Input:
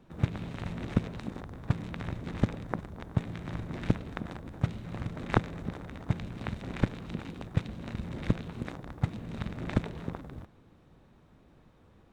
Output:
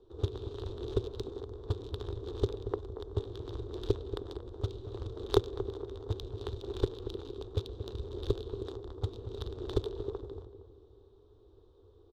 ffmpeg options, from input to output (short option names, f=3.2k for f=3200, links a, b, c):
-filter_complex "[0:a]firequalizer=gain_entry='entry(100,0);entry(160,-28);entry(400,12);entry(590,-9);entry(1100,-5);entry(2100,-23);entry(3500,11)':delay=0.05:min_phase=1,adynamicsmooth=sensitivity=3.5:basefreq=2.1k,asplit=2[a][b];[b]adelay=232,lowpass=f=1k:p=1,volume=-10dB,asplit=2[c][d];[d]adelay=232,lowpass=f=1k:p=1,volume=0.47,asplit=2[e][f];[f]adelay=232,lowpass=f=1k:p=1,volume=0.47,asplit=2[g][h];[h]adelay=232,lowpass=f=1k:p=1,volume=0.47,asplit=2[i][j];[j]adelay=232,lowpass=f=1k:p=1,volume=0.47[k];[c][e][g][i][k]amix=inputs=5:normalize=0[l];[a][l]amix=inputs=2:normalize=0"